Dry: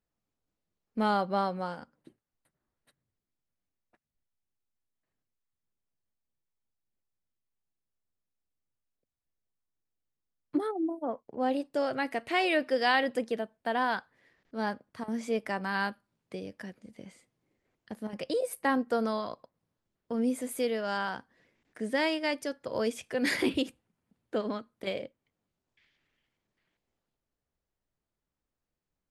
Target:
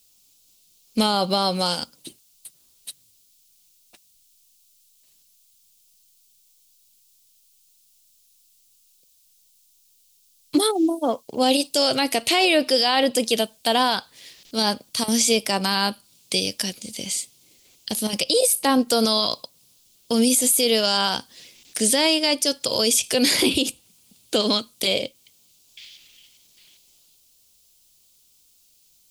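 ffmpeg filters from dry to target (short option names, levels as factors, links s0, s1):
-filter_complex "[0:a]acrossover=split=1600[s0][s1];[s1]acompressor=threshold=0.00447:ratio=5[s2];[s0][s2]amix=inputs=2:normalize=0,aexciter=amount=9:drive=8:freq=2700,alimiter=level_in=8.91:limit=0.891:release=50:level=0:latency=1,volume=0.398"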